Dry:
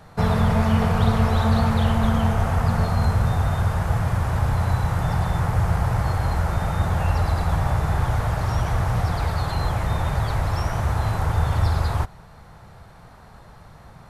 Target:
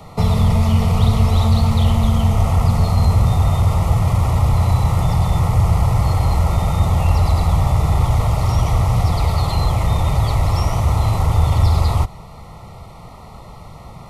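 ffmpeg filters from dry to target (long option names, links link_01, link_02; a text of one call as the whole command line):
ffmpeg -i in.wav -filter_complex "[0:a]asuperstop=centerf=1600:order=8:qfactor=3.1,asplit=2[link_01][link_02];[link_02]asoftclip=type=tanh:threshold=-23dB,volume=-6dB[link_03];[link_01][link_03]amix=inputs=2:normalize=0,acrossover=split=150|3000[link_04][link_05][link_06];[link_05]acompressor=threshold=-27dB:ratio=6[link_07];[link_04][link_07][link_06]amix=inputs=3:normalize=0,volume=5dB" out.wav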